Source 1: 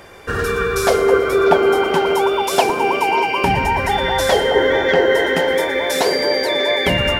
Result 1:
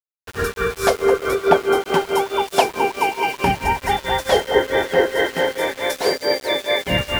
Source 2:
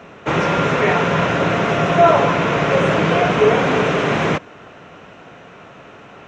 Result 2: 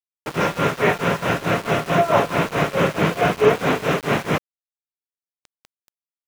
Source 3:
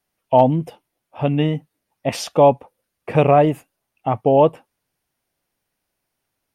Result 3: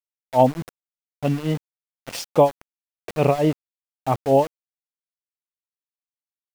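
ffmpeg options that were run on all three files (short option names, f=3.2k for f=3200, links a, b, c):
-af "tremolo=f=4.6:d=0.87,aeval=exprs='val(0)*gte(abs(val(0)),0.0316)':c=same"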